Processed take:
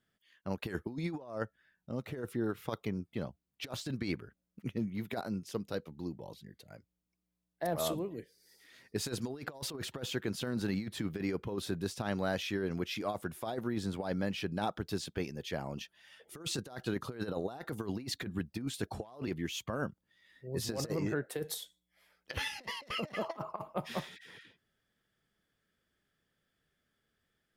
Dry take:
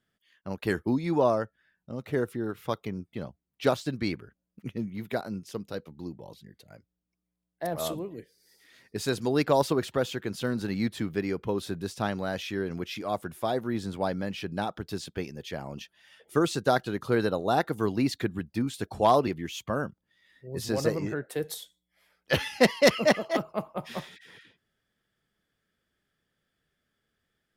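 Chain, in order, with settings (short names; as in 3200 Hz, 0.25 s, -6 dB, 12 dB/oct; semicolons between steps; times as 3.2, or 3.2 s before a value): 23.22–23.62 bell 1000 Hz +14.5 dB 0.72 oct; negative-ratio compressor -30 dBFS, ratio -0.5; gain -5 dB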